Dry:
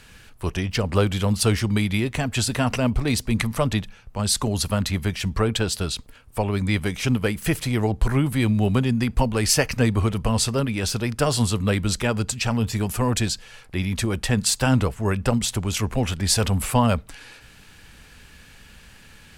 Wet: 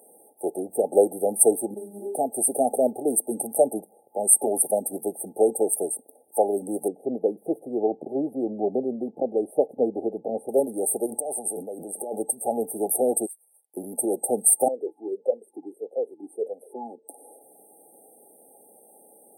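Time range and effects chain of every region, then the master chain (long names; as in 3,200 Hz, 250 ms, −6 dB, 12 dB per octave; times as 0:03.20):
0:01.74–0:02.15: variable-slope delta modulation 64 kbit/s + stiff-string resonator 200 Hz, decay 0.26 s, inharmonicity 0.002 + flutter between parallel walls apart 7.7 metres, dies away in 0.35 s
0:06.88–0:10.49: moving average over 36 samples + saturating transformer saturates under 130 Hz
0:11.06–0:12.16: parametric band 2,100 Hz +9 dB 2.8 octaves + compressor whose output falls as the input rises −29 dBFS
0:13.26–0:13.77: downward expander −38 dBFS + first-order pre-emphasis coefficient 0.97 + downward compressor 3 to 1, threshold −44 dBFS
0:14.68–0:17.08: upward compression, threshold −29 dBFS + formant filter swept between two vowels e-u 1.6 Hz
whole clip: brick-wall band-stop 860–8,300 Hz; high-pass filter 360 Hz 24 dB per octave; dynamic equaliser 7,200 Hz, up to +5 dB, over −48 dBFS, Q 0.71; level +6.5 dB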